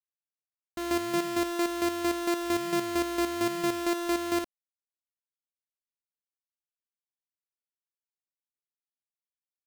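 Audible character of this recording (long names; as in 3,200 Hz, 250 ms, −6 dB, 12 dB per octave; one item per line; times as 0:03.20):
a buzz of ramps at a fixed pitch in blocks of 128 samples
chopped level 4.4 Hz, depth 60%, duty 30%
a quantiser's noise floor 8 bits, dither none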